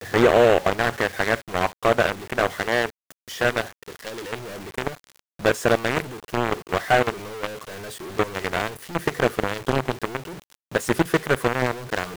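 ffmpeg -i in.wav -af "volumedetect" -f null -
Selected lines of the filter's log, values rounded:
mean_volume: -24.0 dB
max_volume: -7.4 dB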